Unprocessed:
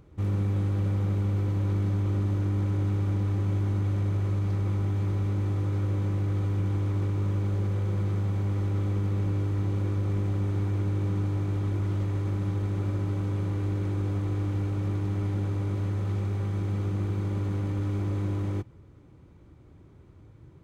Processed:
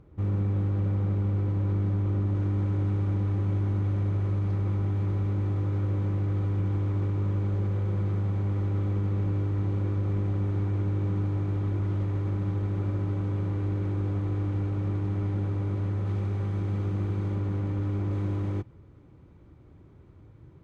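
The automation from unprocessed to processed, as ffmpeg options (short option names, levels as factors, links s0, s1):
-af "asetnsamples=n=441:p=0,asendcmd='2.35 lowpass f 2300;16.06 lowpass f 3300;17.35 lowpass f 2300;18.11 lowpass f 3400',lowpass=f=1600:p=1"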